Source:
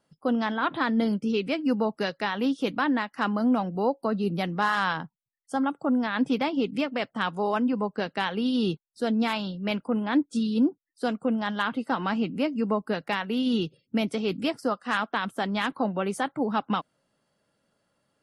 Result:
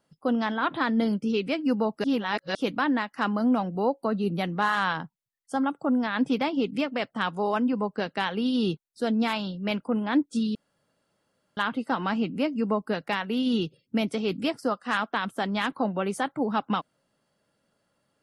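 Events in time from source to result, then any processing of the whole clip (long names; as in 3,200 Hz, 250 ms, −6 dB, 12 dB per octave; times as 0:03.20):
0:02.04–0:02.55: reverse
0:03.67–0:04.95: notch filter 5,100 Hz, Q 5.9
0:10.55–0:11.57: fill with room tone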